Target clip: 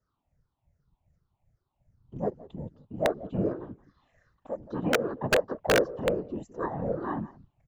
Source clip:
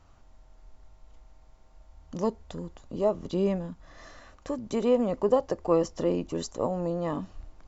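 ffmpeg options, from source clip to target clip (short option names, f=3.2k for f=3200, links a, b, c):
-af "afftfilt=real='re*pow(10,18/40*sin(2*PI*(0.55*log(max(b,1)*sr/1024/100)/log(2)-(-2.6)*(pts-256)/sr)))':imag='im*pow(10,18/40*sin(2*PI*(0.55*log(max(b,1)*sr/1024/100)/log(2)-(-2.6)*(pts-256)/sr)))':win_size=1024:overlap=0.75,afwtdn=0.0178,adynamicequalizer=threshold=0.01:dfrequency=2000:dqfactor=0.74:tfrequency=2000:tqfactor=0.74:attack=5:release=100:ratio=0.375:range=4:mode=boostabove:tftype=bell,highpass=84,aecho=1:1:173:0.112,afftfilt=real='hypot(re,im)*cos(2*PI*random(0))':imag='hypot(re,im)*sin(2*PI*random(1))':win_size=512:overlap=0.75,aeval=exprs='(mod(5.01*val(0)+1,2)-1)/5.01':c=same,highshelf=f=6.6k:g=-10"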